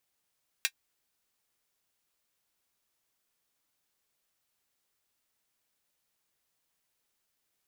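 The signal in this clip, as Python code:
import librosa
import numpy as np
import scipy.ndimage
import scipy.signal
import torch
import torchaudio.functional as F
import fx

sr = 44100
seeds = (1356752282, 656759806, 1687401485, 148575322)

y = fx.drum_hat(sr, length_s=0.24, from_hz=2000.0, decay_s=0.07)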